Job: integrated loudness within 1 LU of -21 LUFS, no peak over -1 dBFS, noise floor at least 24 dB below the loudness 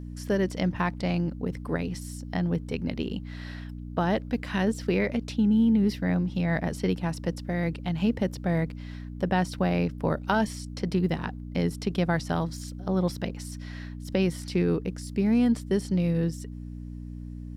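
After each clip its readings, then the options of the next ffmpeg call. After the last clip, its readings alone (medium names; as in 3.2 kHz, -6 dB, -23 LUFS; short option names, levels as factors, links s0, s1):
hum 60 Hz; highest harmonic 300 Hz; hum level -35 dBFS; loudness -28.0 LUFS; peak level -11.0 dBFS; loudness target -21.0 LUFS
-> -af "bandreject=f=60:t=h:w=4,bandreject=f=120:t=h:w=4,bandreject=f=180:t=h:w=4,bandreject=f=240:t=h:w=4,bandreject=f=300:t=h:w=4"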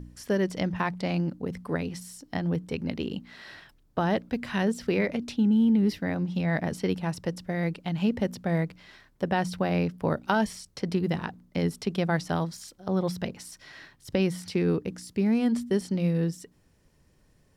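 hum not found; loudness -28.5 LUFS; peak level -10.5 dBFS; loudness target -21.0 LUFS
-> -af "volume=2.37"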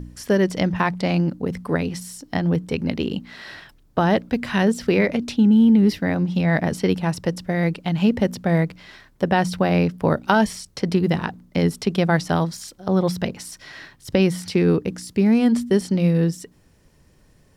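loudness -21.0 LUFS; peak level -3.0 dBFS; noise floor -56 dBFS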